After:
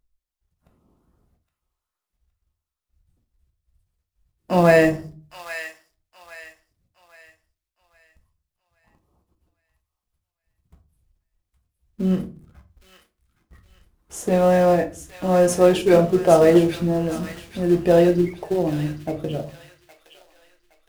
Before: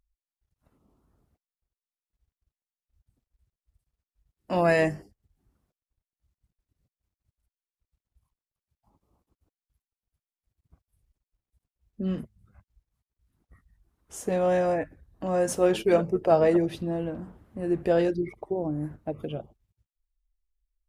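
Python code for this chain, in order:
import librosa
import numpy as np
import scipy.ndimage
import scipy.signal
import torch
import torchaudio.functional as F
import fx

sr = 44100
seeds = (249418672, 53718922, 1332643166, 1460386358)

p1 = fx.quant_companded(x, sr, bits=4)
p2 = x + F.gain(torch.from_numpy(p1), -9.0).numpy()
p3 = fx.echo_wet_highpass(p2, sr, ms=816, feedback_pct=35, hz=1600.0, wet_db=-7.0)
p4 = fx.room_shoebox(p3, sr, seeds[0], volume_m3=200.0, walls='furnished', distance_m=0.9)
y = F.gain(torch.from_numpy(p4), 2.5).numpy()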